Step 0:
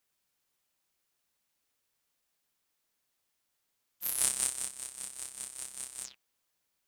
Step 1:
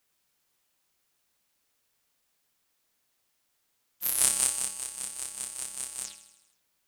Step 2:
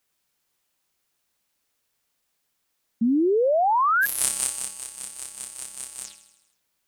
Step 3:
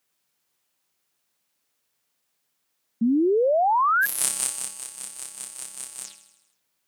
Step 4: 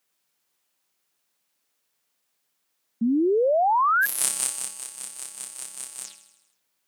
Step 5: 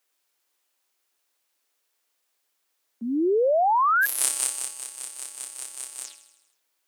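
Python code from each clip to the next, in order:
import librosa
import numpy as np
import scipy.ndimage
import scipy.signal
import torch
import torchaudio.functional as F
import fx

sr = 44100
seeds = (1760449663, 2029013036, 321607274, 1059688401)

y1 = fx.echo_feedback(x, sr, ms=80, feedback_pct=59, wet_db=-13.0)
y1 = y1 * librosa.db_to_amplitude(5.0)
y2 = fx.spec_paint(y1, sr, seeds[0], shape='rise', start_s=3.01, length_s=1.05, low_hz=220.0, high_hz=1700.0, level_db=-20.0)
y3 = scipy.signal.sosfilt(scipy.signal.butter(2, 91.0, 'highpass', fs=sr, output='sos'), y2)
y4 = fx.low_shelf(y3, sr, hz=110.0, db=-8.5)
y5 = scipy.signal.sosfilt(scipy.signal.butter(4, 290.0, 'highpass', fs=sr, output='sos'), y4)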